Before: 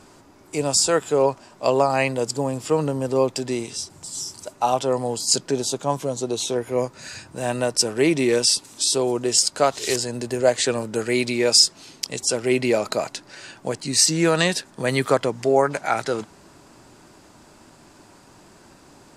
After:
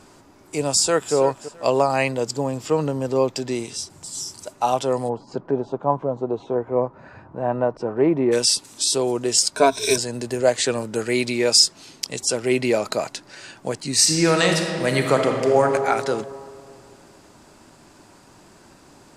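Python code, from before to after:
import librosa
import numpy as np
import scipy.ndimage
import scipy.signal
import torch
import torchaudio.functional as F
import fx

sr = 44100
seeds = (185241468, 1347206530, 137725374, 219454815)

y = fx.echo_throw(x, sr, start_s=0.75, length_s=0.4, ms=330, feedback_pct=25, wet_db=-13.5)
y = fx.peak_eq(y, sr, hz=9700.0, db=-12.0, octaves=0.29, at=(2.11, 3.55))
y = fx.lowpass_res(y, sr, hz=1000.0, q=1.5, at=(5.08, 8.31), fade=0.02)
y = fx.ripple_eq(y, sr, per_octave=1.6, db=17, at=(9.56, 9.98))
y = fx.reverb_throw(y, sr, start_s=13.93, length_s=1.72, rt60_s=2.4, drr_db=2.5)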